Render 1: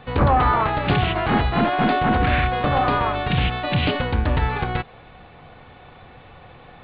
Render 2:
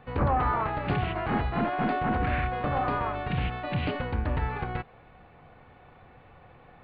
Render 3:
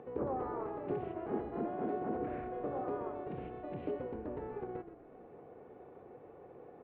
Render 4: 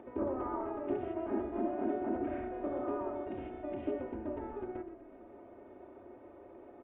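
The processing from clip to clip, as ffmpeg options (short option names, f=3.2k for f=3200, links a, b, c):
-af "equalizer=f=3.6k:w=1.9:g=-9,volume=-8dB"
-filter_complex "[0:a]acompressor=mode=upward:threshold=-33dB:ratio=2.5,bandpass=f=400:t=q:w=3.1:csg=0,asplit=7[a][b][c][d][e][f][g];[b]adelay=123,afreqshift=-31,volume=-11.5dB[h];[c]adelay=246,afreqshift=-62,volume=-16.9dB[i];[d]adelay=369,afreqshift=-93,volume=-22.2dB[j];[e]adelay=492,afreqshift=-124,volume=-27.6dB[k];[f]adelay=615,afreqshift=-155,volume=-32.9dB[l];[g]adelay=738,afreqshift=-186,volume=-38.3dB[m];[a][h][i][j][k][l][m]amix=inputs=7:normalize=0"
-af "aecho=1:1:3.2:0.92,bandreject=f=61.86:t=h:w=4,bandreject=f=123.72:t=h:w=4,bandreject=f=185.58:t=h:w=4,bandreject=f=247.44:t=h:w=4,bandreject=f=309.3:t=h:w=4,bandreject=f=371.16:t=h:w=4,bandreject=f=433.02:t=h:w=4,bandreject=f=494.88:t=h:w=4,bandreject=f=556.74:t=h:w=4,bandreject=f=618.6:t=h:w=4,bandreject=f=680.46:t=h:w=4,bandreject=f=742.32:t=h:w=4,bandreject=f=804.18:t=h:w=4,bandreject=f=866.04:t=h:w=4,bandreject=f=927.9:t=h:w=4,bandreject=f=989.76:t=h:w=4,bandreject=f=1.05162k:t=h:w=4,bandreject=f=1.11348k:t=h:w=4,bandreject=f=1.17534k:t=h:w=4,bandreject=f=1.2372k:t=h:w=4,bandreject=f=1.29906k:t=h:w=4,bandreject=f=1.36092k:t=h:w=4,bandreject=f=1.42278k:t=h:w=4,bandreject=f=1.48464k:t=h:w=4,bandreject=f=1.5465k:t=h:w=4,bandreject=f=1.60836k:t=h:w=4,bandreject=f=1.67022k:t=h:w=4,bandreject=f=1.73208k:t=h:w=4,bandreject=f=1.79394k:t=h:w=4,bandreject=f=1.8558k:t=h:w=4,bandreject=f=1.91766k:t=h:w=4,bandreject=f=1.97952k:t=h:w=4,bandreject=f=2.04138k:t=h:w=4,aresample=8000,aresample=44100"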